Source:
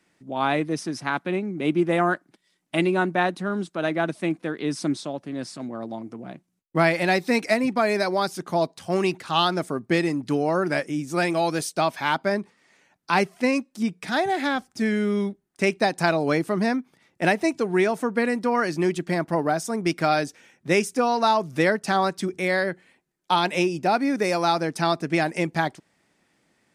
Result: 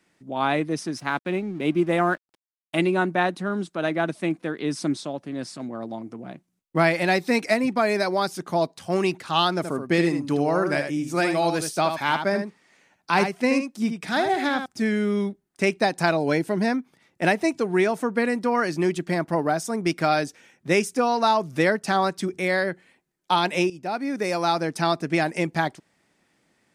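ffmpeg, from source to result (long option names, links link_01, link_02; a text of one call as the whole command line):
ffmpeg -i in.wav -filter_complex "[0:a]asettb=1/sr,asplit=3[link_01][link_02][link_03];[link_01]atrim=end=0.984[link_04];[link_02]atrim=start=0.98:end=2.79,asetpts=PTS-STARTPTS,afade=type=in:duration=0.004:curve=qsin,afade=type=out:start_time=1.806:duration=0.004:curve=qsin,aeval=exprs='sgn(val(0))*max(abs(val(0))-0.00299,0)':channel_layout=same[link_05];[link_03]atrim=start=2.786[link_06];[link_04][link_05]acrossfade=duration=0.004:curve1=hsin:curve2=qsin[link_07];[link_07][link_06]acrossfade=duration=0.004:curve1=qsin:curve2=hsin,asettb=1/sr,asplit=3[link_08][link_09][link_10];[link_08]atrim=end=9.564[link_11];[link_09]atrim=start=9.56:end=14.66,asetpts=PTS-STARTPTS,afade=type=in:duration=0.004:curve=qsin,afade=type=out:start_time=5.096:duration=0.004:curve=qsin,aecho=1:1:77:0.422,atrim=end_sample=224910[link_12];[link_10]atrim=start=14.656[link_13];[link_11][link_12]acrossfade=duration=0.004:curve1=hsin:curve2=qsin[link_14];[link_14][link_13]acrossfade=duration=0.004:curve1=qsin:curve2=hsin,asettb=1/sr,asplit=3[link_15][link_16][link_17];[link_15]atrim=end=16.174[link_18];[link_16]atrim=start=16.17:end=16.68,asetpts=PTS-STARTPTS,afade=type=in:duration=0.004:curve=qsin,afade=type=out:start_time=0.506:duration=0.004:curve=qsin,asuperstop=centerf=1200:order=4:qfactor=5.3[link_19];[link_17]atrim=start=16.676[link_20];[link_18][link_19]acrossfade=duration=0.004:curve1=hsin:curve2=qsin[link_21];[link_21][link_20]acrossfade=duration=0.004:curve1=qsin:curve2=hsin,asplit=2[link_22][link_23];[link_22]atrim=end=23.7,asetpts=PTS-STARTPTS,afade=type=out:start_time=23.696:duration=0.004:curve=hsin:silence=0.223872[link_24];[link_23]atrim=start=23.7,asetpts=PTS-STARTPTS,afade=type=in:duration=1.17:curve=qsin:silence=0.223872[link_25];[link_24][link_25]concat=n=2:v=0:a=1" out.wav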